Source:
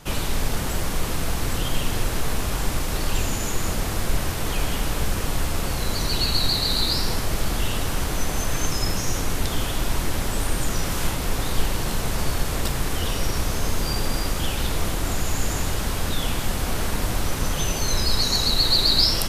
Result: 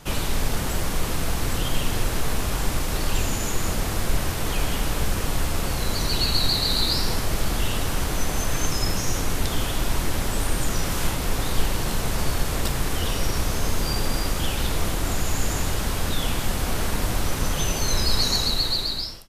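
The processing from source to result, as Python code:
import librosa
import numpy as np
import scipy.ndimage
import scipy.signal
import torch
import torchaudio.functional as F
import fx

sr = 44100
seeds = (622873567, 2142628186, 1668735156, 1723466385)

y = fx.fade_out_tail(x, sr, length_s=1.02)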